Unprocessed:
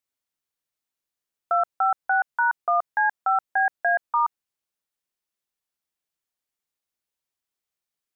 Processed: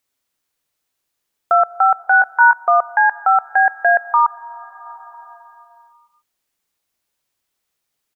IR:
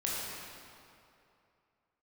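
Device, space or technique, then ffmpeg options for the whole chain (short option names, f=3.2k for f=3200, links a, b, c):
ducked reverb: -filter_complex "[0:a]asplit=3[a][b][c];[a]afade=t=out:st=2.12:d=0.02[d];[b]asplit=2[e][f];[f]adelay=19,volume=-5dB[g];[e][g]amix=inputs=2:normalize=0,afade=t=in:st=2.12:d=0.02,afade=t=out:st=2.54:d=0.02[h];[c]afade=t=in:st=2.54:d=0.02[i];[d][h][i]amix=inputs=3:normalize=0,asplit=3[j][k][l];[1:a]atrim=start_sample=2205[m];[k][m]afir=irnorm=-1:irlink=0[n];[l]apad=whole_len=359645[o];[n][o]sidechaincompress=threshold=-34dB:ratio=16:attack=7.3:release=852,volume=-8dB[p];[j][p]amix=inputs=2:normalize=0,volume=8dB"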